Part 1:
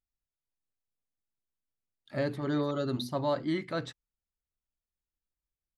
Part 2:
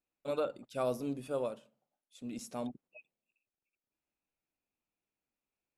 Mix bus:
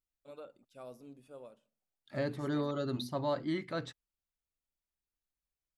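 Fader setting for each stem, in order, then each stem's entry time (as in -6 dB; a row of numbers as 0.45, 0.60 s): -3.5, -15.5 dB; 0.00, 0.00 s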